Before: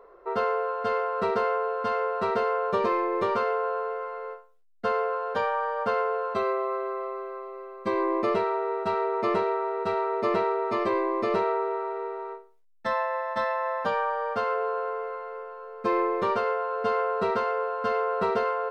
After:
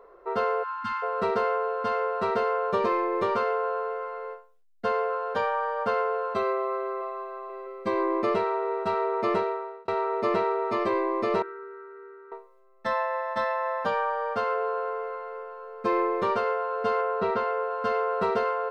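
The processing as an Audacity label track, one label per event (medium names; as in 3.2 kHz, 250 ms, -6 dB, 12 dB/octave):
0.630000	1.030000	spectral selection erased 290–770 Hz
4.240000	5.100000	band-stop 1.3 kHz, Q 19
6.530000	7.180000	echo throw 480 ms, feedback 80%, level -11 dB
9.370000	9.880000	fade out
11.420000	12.320000	two resonant band-passes 710 Hz, apart 2.2 oct
17.010000	17.710000	distance through air 110 m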